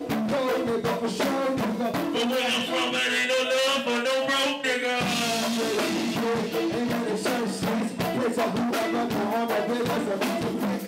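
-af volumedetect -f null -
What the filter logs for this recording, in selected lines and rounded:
mean_volume: -25.6 dB
max_volume: -14.8 dB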